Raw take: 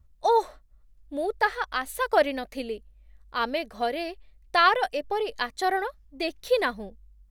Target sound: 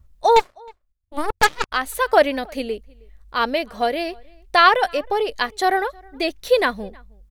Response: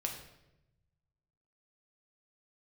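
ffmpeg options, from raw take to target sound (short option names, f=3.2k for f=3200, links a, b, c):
-filter_complex "[0:a]asettb=1/sr,asplit=3[a][b][c];[a]atrim=end=0.364[d];[b]atrim=start=0.36:end=1.72,asetpts=PTS-STARTPTS,afade=t=in:d=0.004:c=qsin,afade=t=out:st=1.356:d=0.004:c=qsin,aeval=exprs='0.316*(cos(1*acos(clip(val(0)/0.316,-1,1)))-cos(1*PI/2))+0.0112*(cos(5*acos(clip(val(0)/0.316,-1,1)))-cos(5*PI/2))+0.02*(cos(6*acos(clip(val(0)/0.316,-1,1)))-cos(6*PI/2))+0.0501*(cos(7*acos(clip(val(0)/0.316,-1,1)))-cos(7*PI/2))+0.0631*(cos(8*acos(clip(val(0)/0.316,-1,1)))-cos(8*PI/2))':c=same[e];[c]atrim=start=1.716[f];[d][e]acrossfade=d=0.004:c1=hsin:c2=qsin[g];[g][f]acrossfade=d=0.004:c1=qsin:c2=hsin,asplit=2[h][i];[i]adelay=314.9,volume=-27dB,highshelf=f=4k:g=-7.08[j];[h][j]amix=inputs=2:normalize=0,volume=6.5dB"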